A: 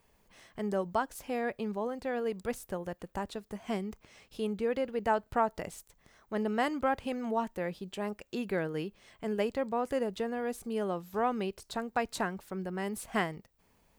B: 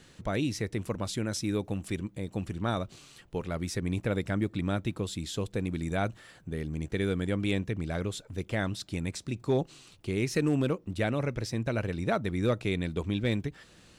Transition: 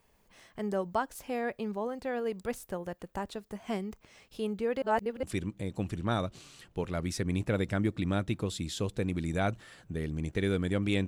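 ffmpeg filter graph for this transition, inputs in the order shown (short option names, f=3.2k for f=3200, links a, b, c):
-filter_complex "[0:a]apad=whole_dur=11.07,atrim=end=11.07,asplit=2[a][b];[a]atrim=end=4.822[c];[b]atrim=start=4.818:end=5.232,asetpts=PTS-STARTPTS,areverse[d];[1:a]atrim=start=1.798:end=7.64[e];[c][d]acrossfade=d=0.004:c1=hsin:c2=hsin[f];[f][e]acrossfade=d=0.004:c1=hsin:c2=hsin"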